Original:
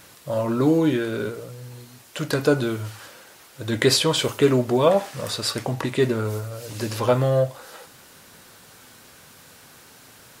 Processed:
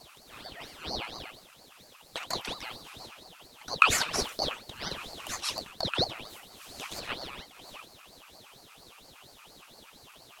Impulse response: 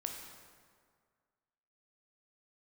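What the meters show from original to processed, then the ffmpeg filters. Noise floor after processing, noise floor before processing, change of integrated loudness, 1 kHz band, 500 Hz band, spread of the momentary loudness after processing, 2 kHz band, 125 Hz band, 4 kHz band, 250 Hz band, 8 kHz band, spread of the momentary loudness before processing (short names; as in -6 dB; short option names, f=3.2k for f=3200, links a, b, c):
-56 dBFS, -49 dBFS, -9.5 dB, -4.5 dB, -20.0 dB, 23 LU, -2.0 dB, -21.0 dB, -5.0 dB, -21.5 dB, -5.0 dB, 17 LU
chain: -af "afreqshift=-56,highpass=f=1.9k:t=q:w=8.8,aeval=exprs='val(0)*sin(2*PI*1600*n/s+1600*0.65/4.3*sin(2*PI*4.3*n/s))':c=same,volume=-6.5dB"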